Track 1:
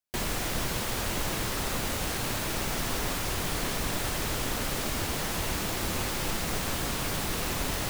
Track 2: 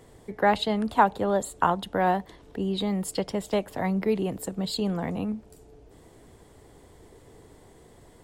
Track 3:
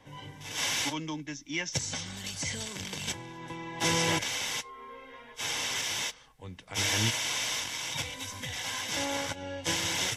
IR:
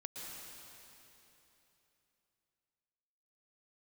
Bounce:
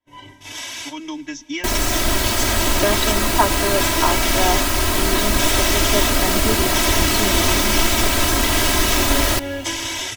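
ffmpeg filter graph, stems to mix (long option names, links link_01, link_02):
-filter_complex "[0:a]adelay=1500,volume=2.5dB,asplit=2[link_01][link_02];[link_02]volume=-23dB[link_03];[1:a]adelay=2400,volume=-7dB[link_04];[2:a]acompressor=threshold=-35dB:ratio=6,agate=range=-33dB:threshold=-42dB:ratio=3:detection=peak,volume=2.5dB,asplit=2[link_05][link_06];[link_06]volume=-18dB[link_07];[3:a]atrim=start_sample=2205[link_08];[link_07][link_08]afir=irnorm=-1:irlink=0[link_09];[link_03]aecho=0:1:630|1260|1890:1|0.17|0.0289[link_10];[link_01][link_04][link_05][link_09][link_10]amix=inputs=5:normalize=0,aecho=1:1:3.1:0.95,dynaudnorm=framelen=240:gausssize=13:maxgain=9.5dB"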